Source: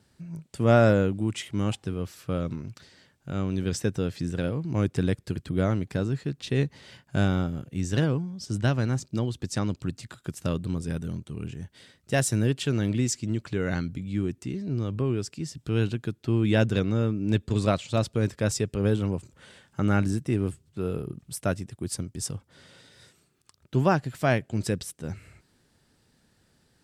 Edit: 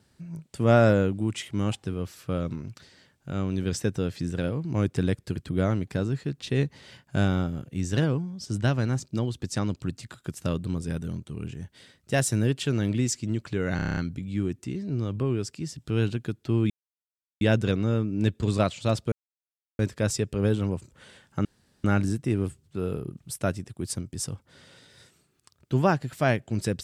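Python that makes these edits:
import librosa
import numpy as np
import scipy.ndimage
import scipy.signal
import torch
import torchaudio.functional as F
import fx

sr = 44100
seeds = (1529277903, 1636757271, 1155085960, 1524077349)

y = fx.edit(x, sr, fx.stutter(start_s=13.76, slice_s=0.03, count=8),
    fx.insert_silence(at_s=16.49, length_s=0.71),
    fx.insert_silence(at_s=18.2, length_s=0.67),
    fx.insert_room_tone(at_s=19.86, length_s=0.39), tone=tone)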